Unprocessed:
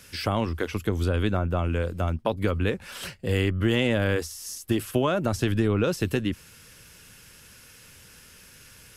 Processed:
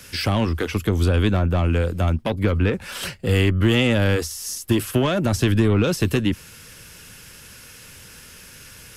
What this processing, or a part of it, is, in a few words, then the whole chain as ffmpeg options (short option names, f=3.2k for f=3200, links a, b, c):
one-band saturation: -filter_complex "[0:a]asettb=1/sr,asplit=3[a][b][c];[a]atrim=end=2.304[d];[b]atrim=start=2.3:end=2.74,asetpts=PTS-STARTPTS,afade=t=in:d=0.004:c=qsin,afade=t=out:st=0.436:d=0.004:c=qsin,acrossover=split=3100[e][f];[f]acompressor=threshold=-53dB:ratio=4:attack=1:release=60[g];[e][g]amix=inputs=2:normalize=0[h];[c]atrim=start=2.736[i];[d][h]acrossfade=d=0.004:c1=hsin:c2=qsin[j];[j][i]acrossfade=d=0.004:c1=qsin:c2=hsin,acrossover=split=290|2200[k][l][m];[l]asoftclip=type=tanh:threshold=-28dB[n];[k][n][m]amix=inputs=3:normalize=0,volume=7dB"